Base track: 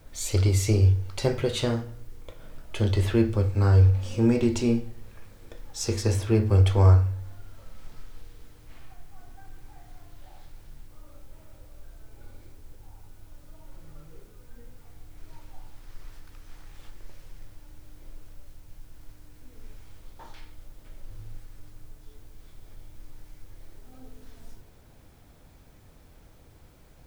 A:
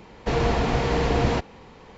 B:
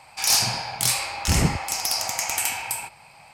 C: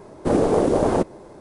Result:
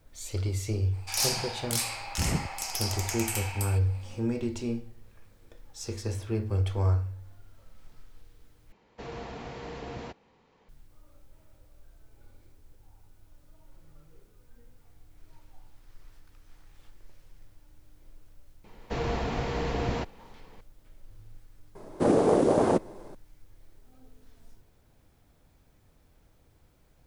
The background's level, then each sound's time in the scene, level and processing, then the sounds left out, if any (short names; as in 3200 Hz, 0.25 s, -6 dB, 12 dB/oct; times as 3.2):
base track -8.5 dB
0.9 add B -8 dB, fades 0.05 s
8.72 replace with A -16.5 dB + low shelf 74 Hz -9 dB
18.64 add A -8 dB
21.75 add C -3.5 dB + HPF 100 Hz